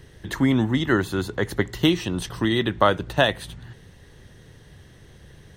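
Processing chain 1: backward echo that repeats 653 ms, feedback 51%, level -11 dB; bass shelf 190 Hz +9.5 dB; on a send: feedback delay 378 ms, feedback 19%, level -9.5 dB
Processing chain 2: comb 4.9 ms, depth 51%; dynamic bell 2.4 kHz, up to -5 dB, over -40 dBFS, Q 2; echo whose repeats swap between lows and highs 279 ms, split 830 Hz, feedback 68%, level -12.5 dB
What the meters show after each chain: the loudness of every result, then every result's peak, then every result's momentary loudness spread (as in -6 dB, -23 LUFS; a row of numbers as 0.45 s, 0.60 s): -19.5 LUFS, -22.5 LUFS; -1.5 dBFS, -3.0 dBFS; 16 LU, 17 LU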